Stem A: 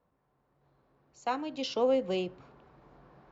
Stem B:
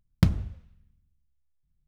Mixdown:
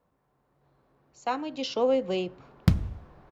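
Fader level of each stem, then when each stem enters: +2.5, −0.5 decibels; 0.00, 2.45 seconds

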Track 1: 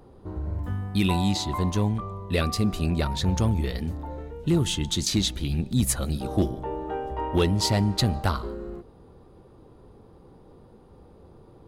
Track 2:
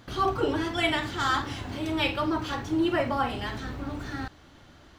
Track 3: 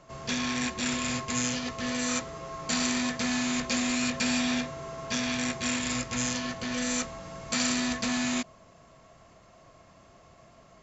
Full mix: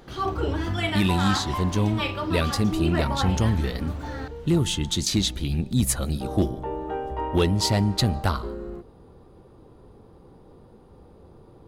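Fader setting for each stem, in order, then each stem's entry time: +1.0 dB, −2.0 dB, muted; 0.00 s, 0.00 s, muted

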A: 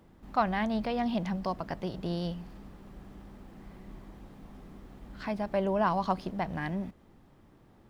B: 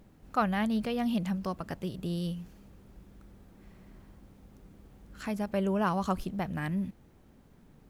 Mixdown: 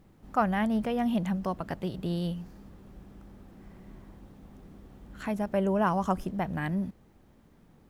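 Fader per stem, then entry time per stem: −5.5, −2.0 decibels; 0.00, 0.00 seconds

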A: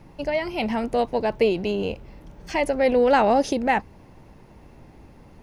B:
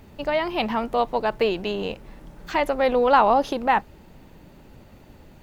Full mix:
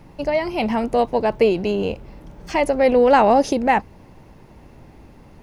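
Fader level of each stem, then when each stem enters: +2.5, −10.5 decibels; 0.00, 0.00 seconds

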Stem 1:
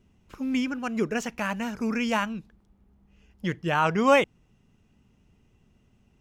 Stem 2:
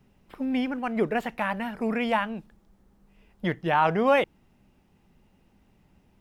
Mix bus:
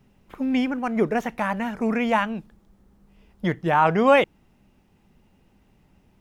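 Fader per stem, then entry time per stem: −8.0, +2.0 decibels; 0.00, 0.00 seconds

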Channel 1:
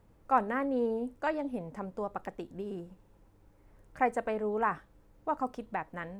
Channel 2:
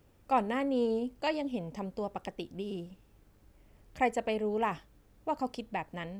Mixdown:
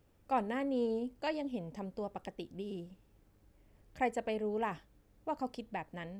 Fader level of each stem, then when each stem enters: −15.5, −5.5 decibels; 0.00, 0.00 seconds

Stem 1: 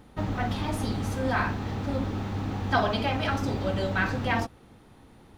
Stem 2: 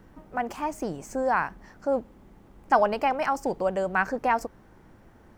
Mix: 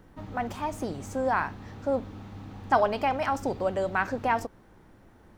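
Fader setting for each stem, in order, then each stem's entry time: −12.0, −2.0 decibels; 0.00, 0.00 seconds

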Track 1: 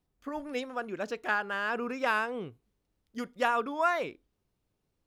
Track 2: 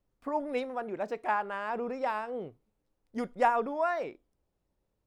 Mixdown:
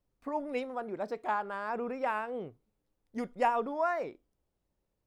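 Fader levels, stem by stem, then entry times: −15.5, −2.5 decibels; 0.00, 0.00 seconds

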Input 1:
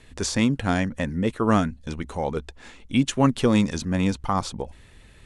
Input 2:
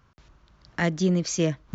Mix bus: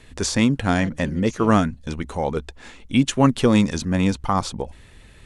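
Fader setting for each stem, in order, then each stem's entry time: +3.0, −12.5 decibels; 0.00, 0.00 seconds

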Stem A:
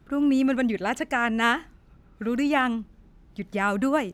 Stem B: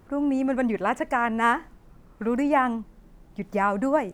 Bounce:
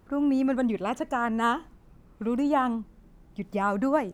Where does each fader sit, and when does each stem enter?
−9.0, −5.0 decibels; 0.00, 0.00 seconds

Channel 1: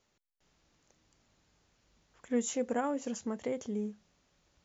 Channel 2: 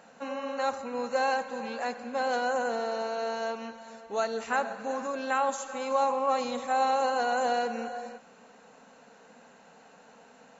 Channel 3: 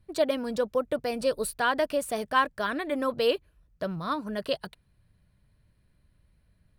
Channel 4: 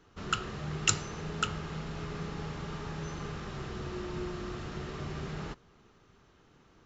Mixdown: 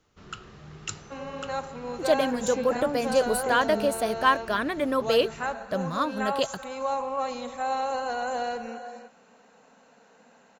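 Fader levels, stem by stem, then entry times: +1.5, −2.5, +2.5, −8.5 decibels; 0.00, 0.90, 1.90, 0.00 seconds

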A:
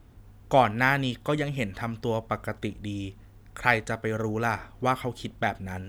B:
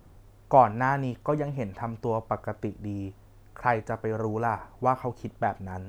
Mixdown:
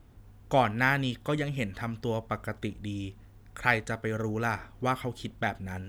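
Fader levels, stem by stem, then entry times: −2.5, −18.5 decibels; 0.00, 0.00 seconds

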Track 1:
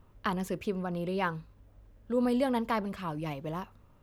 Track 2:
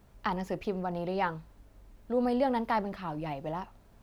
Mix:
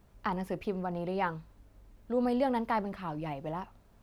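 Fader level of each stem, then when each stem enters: −13.5, −3.0 decibels; 0.00, 0.00 seconds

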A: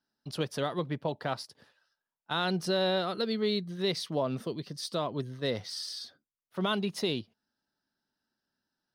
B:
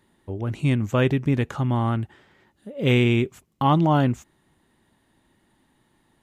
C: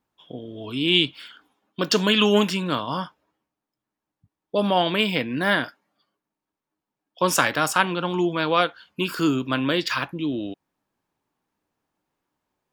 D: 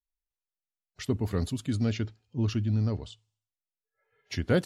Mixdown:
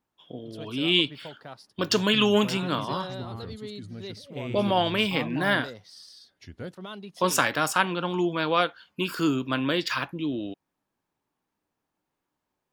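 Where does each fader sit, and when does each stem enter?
−10.0, −17.5, −3.0, −13.5 decibels; 0.20, 1.50, 0.00, 2.10 seconds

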